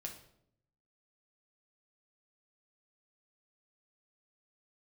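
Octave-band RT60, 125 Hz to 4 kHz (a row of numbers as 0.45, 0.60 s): 1.1, 0.95, 0.80, 0.65, 0.55, 0.50 s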